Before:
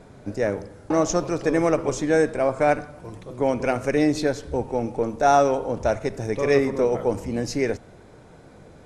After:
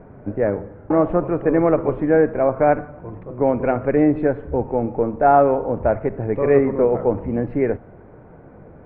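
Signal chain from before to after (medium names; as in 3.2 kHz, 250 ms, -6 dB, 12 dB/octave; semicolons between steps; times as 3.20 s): Bessel low-pass 1.3 kHz, order 8; trim +4.5 dB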